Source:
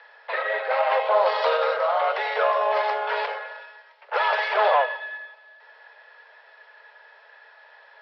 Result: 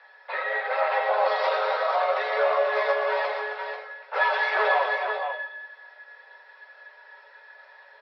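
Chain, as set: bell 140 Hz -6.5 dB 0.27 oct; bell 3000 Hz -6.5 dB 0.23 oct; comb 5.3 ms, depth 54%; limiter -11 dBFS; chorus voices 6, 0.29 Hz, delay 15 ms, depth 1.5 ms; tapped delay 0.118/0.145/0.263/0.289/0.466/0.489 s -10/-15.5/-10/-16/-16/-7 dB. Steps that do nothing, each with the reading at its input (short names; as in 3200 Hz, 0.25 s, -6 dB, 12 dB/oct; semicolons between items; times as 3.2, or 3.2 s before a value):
bell 140 Hz: input band starts at 380 Hz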